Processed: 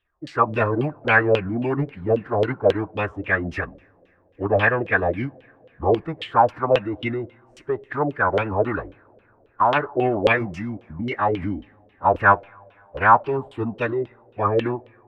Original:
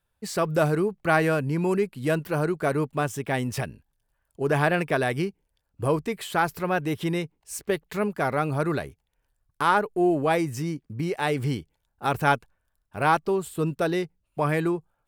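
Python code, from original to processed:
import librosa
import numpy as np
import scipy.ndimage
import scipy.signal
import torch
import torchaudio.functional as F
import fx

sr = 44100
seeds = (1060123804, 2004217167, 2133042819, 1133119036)

y = fx.pitch_keep_formants(x, sr, semitones=-6.0)
y = fx.rev_double_slope(y, sr, seeds[0], early_s=0.41, late_s=3.7, knee_db=-16, drr_db=19.0)
y = fx.filter_lfo_lowpass(y, sr, shape='saw_down', hz=3.7, low_hz=480.0, high_hz=3200.0, q=5.0)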